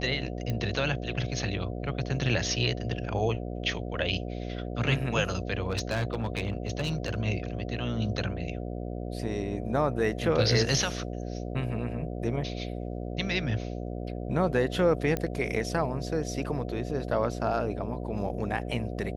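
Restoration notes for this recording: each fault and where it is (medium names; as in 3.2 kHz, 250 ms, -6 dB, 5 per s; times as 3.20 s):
buzz 60 Hz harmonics 12 -35 dBFS
0.50 s: pop -19 dBFS
5.63–7.15 s: clipped -24 dBFS
15.17 s: pop -15 dBFS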